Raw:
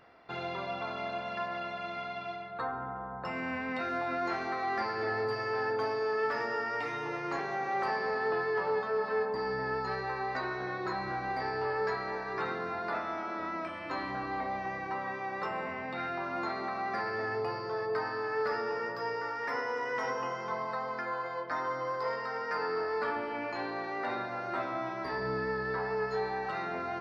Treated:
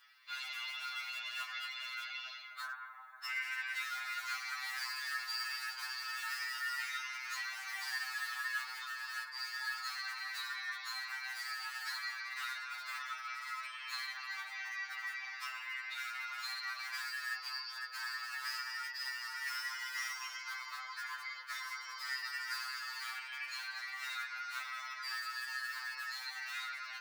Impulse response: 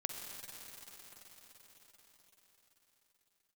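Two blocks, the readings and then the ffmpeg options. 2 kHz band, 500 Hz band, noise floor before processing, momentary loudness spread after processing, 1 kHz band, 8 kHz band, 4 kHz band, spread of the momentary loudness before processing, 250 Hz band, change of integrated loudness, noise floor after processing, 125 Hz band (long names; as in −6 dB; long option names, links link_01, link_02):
−1.5 dB, below −40 dB, −40 dBFS, 4 LU, −12.0 dB, can't be measured, +6.5 dB, 5 LU, below −40 dB, −5.5 dB, −48 dBFS, below −40 dB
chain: -filter_complex "[0:a]aderivative,asplit=2[link_01][link_02];[link_02]aeval=exprs='(mod(158*val(0)+1,2)-1)/158':channel_layout=same,volume=-8dB[link_03];[link_01][link_03]amix=inputs=2:normalize=0,afftfilt=real='hypot(re,im)*cos(2*PI*random(0))':imag='hypot(re,im)*sin(2*PI*random(1))':win_size=512:overlap=0.75,highpass=frequency=1300:width=0.5412,highpass=frequency=1300:width=1.3066,afftfilt=real='re*2.45*eq(mod(b,6),0)':imag='im*2.45*eq(mod(b,6),0)':win_size=2048:overlap=0.75,volume=17dB"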